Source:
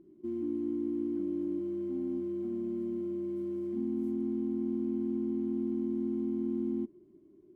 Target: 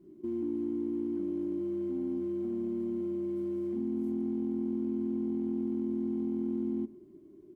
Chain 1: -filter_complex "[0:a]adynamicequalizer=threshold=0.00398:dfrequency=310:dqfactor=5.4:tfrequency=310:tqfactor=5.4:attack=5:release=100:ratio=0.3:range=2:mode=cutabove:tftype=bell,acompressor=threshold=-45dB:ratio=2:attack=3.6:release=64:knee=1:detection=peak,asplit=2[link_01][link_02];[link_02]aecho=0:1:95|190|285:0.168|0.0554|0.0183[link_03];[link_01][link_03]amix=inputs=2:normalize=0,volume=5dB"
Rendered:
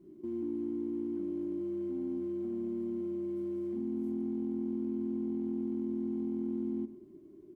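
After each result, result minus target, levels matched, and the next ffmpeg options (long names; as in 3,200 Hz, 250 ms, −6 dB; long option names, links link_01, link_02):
echo-to-direct +6 dB; downward compressor: peak gain reduction +3 dB
-filter_complex "[0:a]adynamicequalizer=threshold=0.00398:dfrequency=310:dqfactor=5.4:tfrequency=310:tqfactor=5.4:attack=5:release=100:ratio=0.3:range=2:mode=cutabove:tftype=bell,acompressor=threshold=-45dB:ratio=2:attack=3.6:release=64:knee=1:detection=peak,asplit=2[link_01][link_02];[link_02]aecho=0:1:95|190:0.0841|0.0278[link_03];[link_01][link_03]amix=inputs=2:normalize=0,volume=5dB"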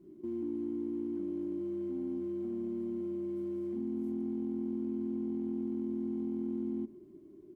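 downward compressor: peak gain reduction +3 dB
-filter_complex "[0:a]adynamicequalizer=threshold=0.00398:dfrequency=310:dqfactor=5.4:tfrequency=310:tqfactor=5.4:attack=5:release=100:ratio=0.3:range=2:mode=cutabove:tftype=bell,acompressor=threshold=-39dB:ratio=2:attack=3.6:release=64:knee=1:detection=peak,asplit=2[link_01][link_02];[link_02]aecho=0:1:95|190:0.0841|0.0278[link_03];[link_01][link_03]amix=inputs=2:normalize=0,volume=5dB"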